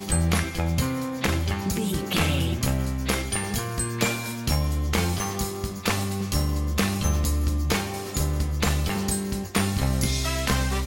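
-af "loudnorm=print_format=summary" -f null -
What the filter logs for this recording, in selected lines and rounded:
Input Integrated:    -25.6 LUFS
Input True Peak:     -10.4 dBTP
Input LRA:             0.6 LU
Input Threshold:     -35.6 LUFS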